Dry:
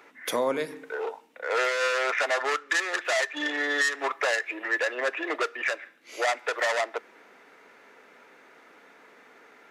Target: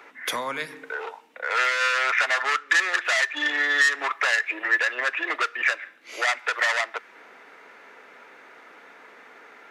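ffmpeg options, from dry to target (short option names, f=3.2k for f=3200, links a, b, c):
-filter_complex "[0:a]equalizer=f=1.5k:w=0.33:g=6.5,acrossover=split=200|1000[a][b][c];[b]acompressor=threshold=-38dB:ratio=6[d];[a][d][c]amix=inputs=3:normalize=0"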